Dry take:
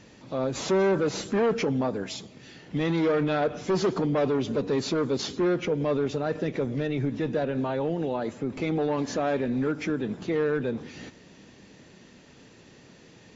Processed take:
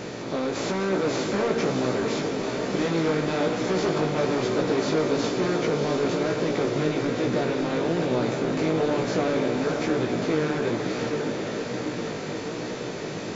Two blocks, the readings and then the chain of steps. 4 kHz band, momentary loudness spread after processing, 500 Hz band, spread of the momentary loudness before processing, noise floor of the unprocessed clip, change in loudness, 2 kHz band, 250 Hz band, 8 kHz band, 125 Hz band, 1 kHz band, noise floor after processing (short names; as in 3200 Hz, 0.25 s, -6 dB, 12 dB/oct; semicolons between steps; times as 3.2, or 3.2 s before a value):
+4.5 dB, 6 LU, +2.5 dB, 8 LU, -53 dBFS, +1.5 dB, +5.0 dB, +2.5 dB, n/a, +2.0 dB, +3.5 dB, -33 dBFS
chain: per-bin compression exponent 0.4; diffused feedback echo 0.638 s, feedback 65%, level -5 dB; chorus 1.1 Hz, delay 16 ms, depth 3.2 ms; gain -2.5 dB